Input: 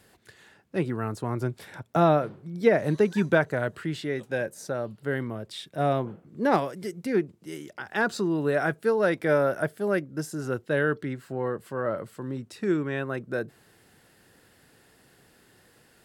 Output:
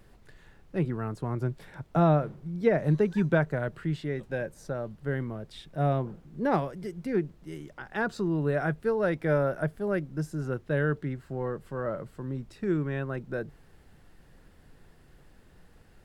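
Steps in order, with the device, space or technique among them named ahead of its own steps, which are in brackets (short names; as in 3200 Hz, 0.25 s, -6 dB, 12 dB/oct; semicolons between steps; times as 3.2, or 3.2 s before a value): car interior (bell 150 Hz +8 dB 0.51 oct; high shelf 3200 Hz -8 dB; brown noise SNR 24 dB); gain -3.5 dB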